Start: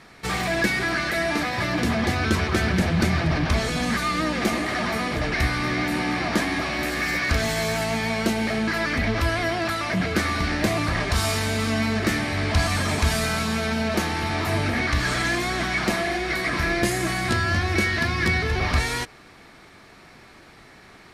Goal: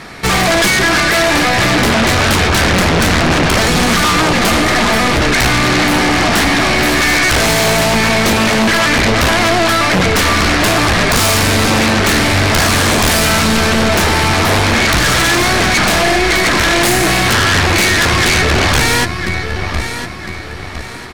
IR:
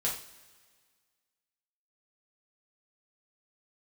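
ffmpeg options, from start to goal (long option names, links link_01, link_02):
-af "aeval=exprs='0.422*(cos(1*acos(clip(val(0)/0.422,-1,1)))-cos(1*PI/2))+0.106*(cos(4*acos(clip(val(0)/0.422,-1,1)))-cos(4*PI/2))':channel_layout=same,aecho=1:1:1007|2014|3021:0.211|0.0719|0.0244,aeval=exprs='0.422*sin(PI/2*4.47*val(0)/0.422)':channel_layout=same"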